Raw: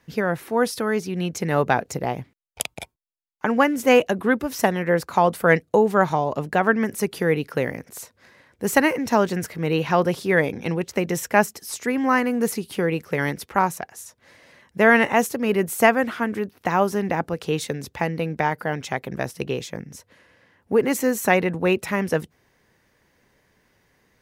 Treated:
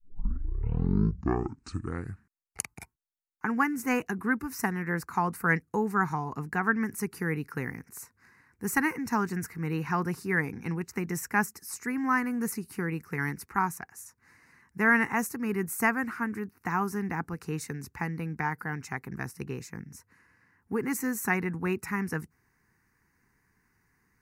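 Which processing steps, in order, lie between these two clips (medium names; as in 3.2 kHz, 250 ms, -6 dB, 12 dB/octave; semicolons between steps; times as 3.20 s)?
tape start-up on the opening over 2.83 s; static phaser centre 1.4 kHz, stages 4; trim -4.5 dB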